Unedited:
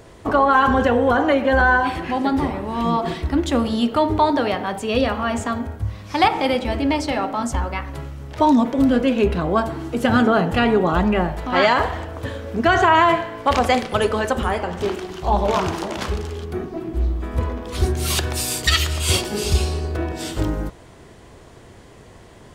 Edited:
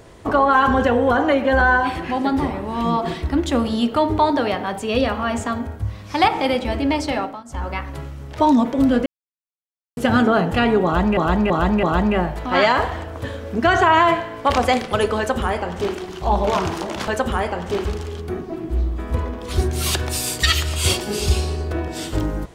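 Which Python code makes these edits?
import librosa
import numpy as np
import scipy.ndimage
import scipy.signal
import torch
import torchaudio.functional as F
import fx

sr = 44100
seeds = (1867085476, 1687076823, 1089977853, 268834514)

y = fx.edit(x, sr, fx.fade_down_up(start_s=7.18, length_s=0.52, db=-24.0, fade_s=0.26),
    fx.silence(start_s=9.06, length_s=0.91),
    fx.repeat(start_s=10.84, length_s=0.33, count=4),
    fx.duplicate(start_s=14.19, length_s=0.77, to_s=16.09), tone=tone)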